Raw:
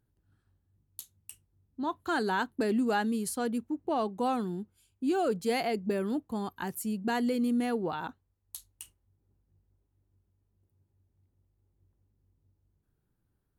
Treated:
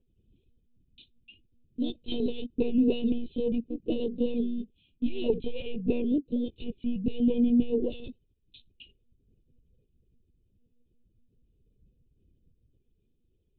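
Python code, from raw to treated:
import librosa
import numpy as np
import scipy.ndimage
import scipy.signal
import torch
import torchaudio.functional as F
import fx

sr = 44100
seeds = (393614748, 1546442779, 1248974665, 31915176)

y = fx.brickwall_bandstop(x, sr, low_hz=630.0, high_hz=2300.0)
y = fx.lpc_monotone(y, sr, seeds[0], pitch_hz=240.0, order=10)
y = fx.transformer_sat(y, sr, knee_hz=66.0)
y = F.gain(torch.from_numpy(y), 6.0).numpy()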